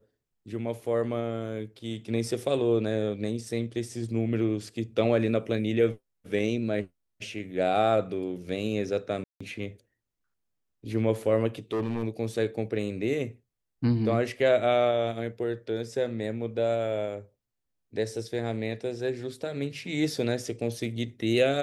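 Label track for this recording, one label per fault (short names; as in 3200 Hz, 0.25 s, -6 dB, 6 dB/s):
9.240000	9.400000	gap 0.165 s
11.730000	12.040000	clipped -25 dBFS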